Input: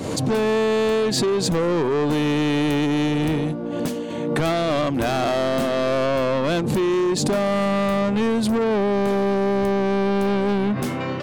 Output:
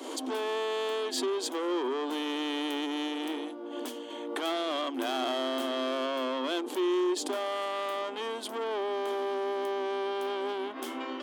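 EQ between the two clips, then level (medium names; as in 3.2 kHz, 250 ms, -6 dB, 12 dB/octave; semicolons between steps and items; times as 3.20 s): rippled Chebyshev high-pass 250 Hz, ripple 6 dB; peaking EQ 3.2 kHz +12.5 dB 0.21 oct; treble shelf 6.6 kHz +6.5 dB; -7.0 dB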